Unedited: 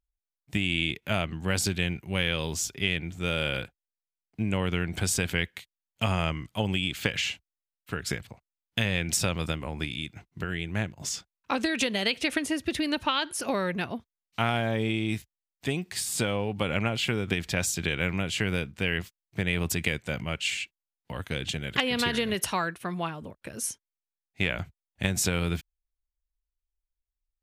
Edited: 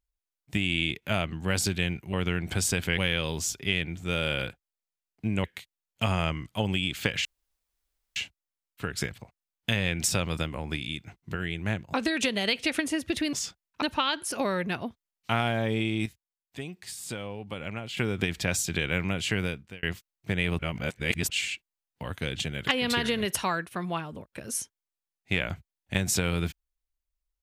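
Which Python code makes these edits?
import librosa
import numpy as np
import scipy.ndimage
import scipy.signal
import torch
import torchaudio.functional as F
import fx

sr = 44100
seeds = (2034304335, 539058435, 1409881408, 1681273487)

y = fx.edit(x, sr, fx.move(start_s=4.59, length_s=0.85, to_s=2.13),
    fx.insert_room_tone(at_s=7.25, length_s=0.91),
    fx.move(start_s=11.03, length_s=0.49, to_s=12.91),
    fx.clip_gain(start_s=15.15, length_s=1.91, db=-8.5),
    fx.fade_out_span(start_s=18.48, length_s=0.44),
    fx.reverse_span(start_s=19.68, length_s=0.71), tone=tone)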